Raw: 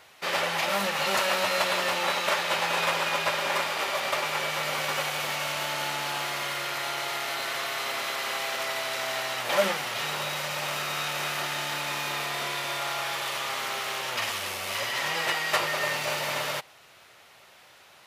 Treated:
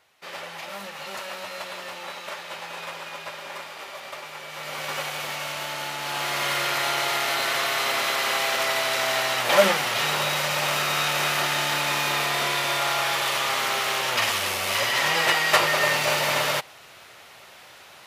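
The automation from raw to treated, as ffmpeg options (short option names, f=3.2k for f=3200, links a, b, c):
-af "volume=6.5dB,afade=t=in:st=4.46:d=0.49:silence=0.375837,afade=t=in:st=5.98:d=0.55:silence=0.421697"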